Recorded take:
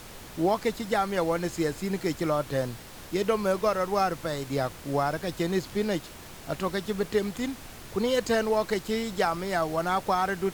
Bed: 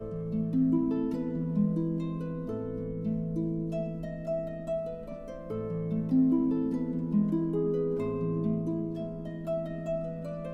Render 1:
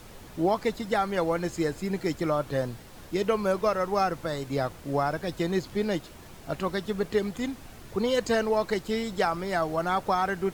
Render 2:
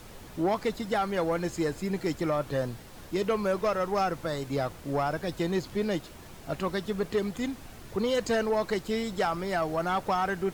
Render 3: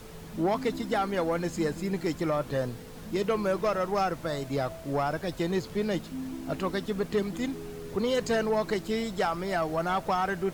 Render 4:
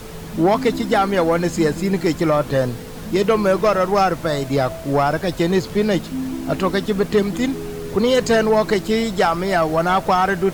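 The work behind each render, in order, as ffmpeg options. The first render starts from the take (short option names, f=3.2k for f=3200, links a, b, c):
-af "afftdn=nr=6:nf=-45"
-af "acrusher=bits=10:mix=0:aa=0.000001,asoftclip=type=tanh:threshold=-19dB"
-filter_complex "[1:a]volume=-12.5dB[a];[0:a][a]amix=inputs=2:normalize=0"
-af "volume=11dB"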